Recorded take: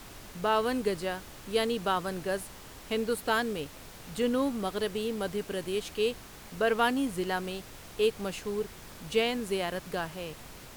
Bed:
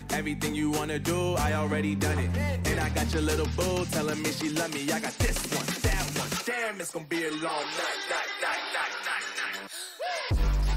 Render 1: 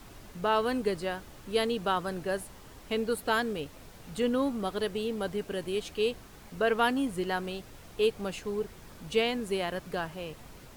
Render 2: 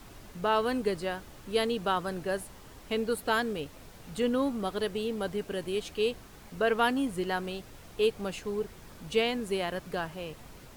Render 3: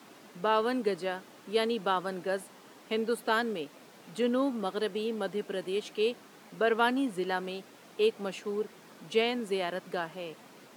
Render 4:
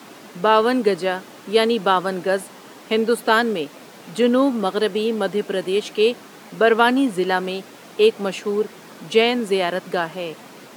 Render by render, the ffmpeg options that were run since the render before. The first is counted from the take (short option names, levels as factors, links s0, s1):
-af "afftdn=nr=6:nf=-48"
-af anull
-af "highpass=f=190:w=0.5412,highpass=f=190:w=1.3066,highshelf=f=7000:g=-6.5"
-af "volume=3.76,alimiter=limit=0.708:level=0:latency=1"